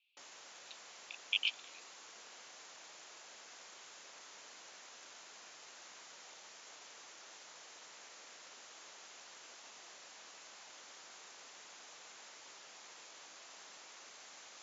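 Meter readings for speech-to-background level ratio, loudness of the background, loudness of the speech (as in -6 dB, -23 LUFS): 18.0 dB, -53.0 LUFS, -35.0 LUFS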